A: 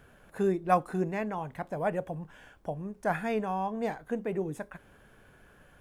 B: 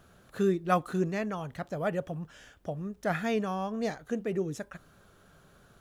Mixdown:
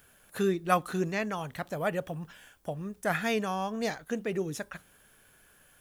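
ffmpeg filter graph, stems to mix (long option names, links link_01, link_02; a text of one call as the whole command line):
ffmpeg -i stem1.wav -i stem2.wav -filter_complex "[0:a]bandreject=frequency=60:width_type=h:width=6,bandreject=frequency=120:width_type=h:width=6,bandreject=frequency=180:width_type=h:width=6,acompressor=threshold=-43dB:ratio=1.5,volume=-8.5dB,asplit=2[link_01][link_02];[1:a]highshelf=frequency=4500:gain=-11.5,volume=-3dB[link_03];[link_02]apad=whole_len=255848[link_04];[link_03][link_04]sidechaingate=range=-33dB:threshold=-58dB:ratio=16:detection=peak[link_05];[link_01][link_05]amix=inputs=2:normalize=0,crystalizer=i=7:c=0" out.wav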